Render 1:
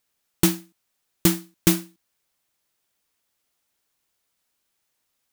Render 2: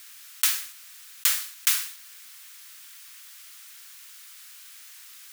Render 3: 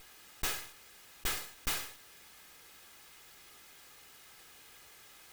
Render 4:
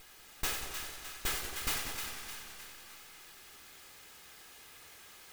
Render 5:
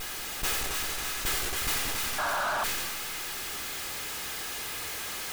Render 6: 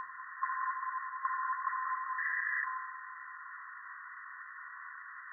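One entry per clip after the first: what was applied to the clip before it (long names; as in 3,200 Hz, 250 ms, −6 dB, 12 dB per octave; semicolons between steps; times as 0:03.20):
high-pass filter 1,300 Hz 24 dB per octave; envelope flattener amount 50%
lower of the sound and its delayed copy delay 2.4 ms; high-shelf EQ 3,300 Hz −10.5 dB; soft clipping −26 dBFS, distortion −9 dB
echo with a time of its own for lows and highs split 930 Hz, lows 197 ms, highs 306 ms, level −7 dB; feedback echo with a swinging delay time 92 ms, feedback 78%, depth 88 cents, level −9 dB
sound drawn into the spectrogram noise, 0:02.18–0:02.64, 560–1,700 Hz −34 dBFS; power curve on the samples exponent 0.35; level that may fall only so fast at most 21 dB per second; level −2 dB
neighbouring bands swapped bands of 1,000 Hz; linear-phase brick-wall band-pass 1,000–2,000 Hz; on a send at −10 dB: convolution reverb RT60 0.70 s, pre-delay 3 ms; on the sum: level −1 dB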